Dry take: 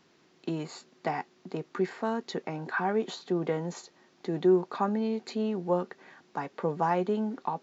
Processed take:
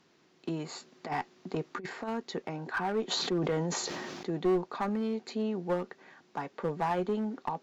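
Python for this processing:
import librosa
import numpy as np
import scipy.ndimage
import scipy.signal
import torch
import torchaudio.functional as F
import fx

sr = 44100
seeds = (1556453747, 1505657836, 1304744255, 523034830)

y = fx.over_compress(x, sr, threshold_db=-32.0, ratio=-0.5, at=(0.66, 2.07), fade=0.02)
y = fx.clip_asym(y, sr, top_db=-25.0, bottom_db=-16.5)
y = fx.sustainer(y, sr, db_per_s=22.0, at=(3.1, 4.27), fade=0.02)
y = F.gain(torch.from_numpy(y), -2.0).numpy()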